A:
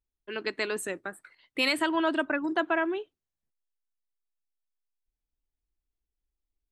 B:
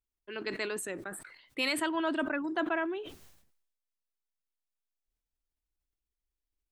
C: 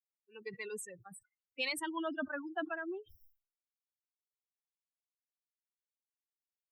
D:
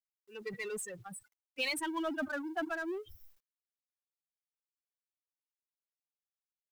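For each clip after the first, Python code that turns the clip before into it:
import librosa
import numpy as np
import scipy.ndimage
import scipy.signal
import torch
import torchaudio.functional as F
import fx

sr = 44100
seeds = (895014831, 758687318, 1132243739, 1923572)

y1 = fx.sustainer(x, sr, db_per_s=64.0)
y1 = y1 * librosa.db_to_amplitude(-5.0)
y2 = fx.bin_expand(y1, sr, power=3.0)
y2 = y2 * librosa.db_to_amplitude(-1.5)
y3 = fx.law_mismatch(y2, sr, coded='mu')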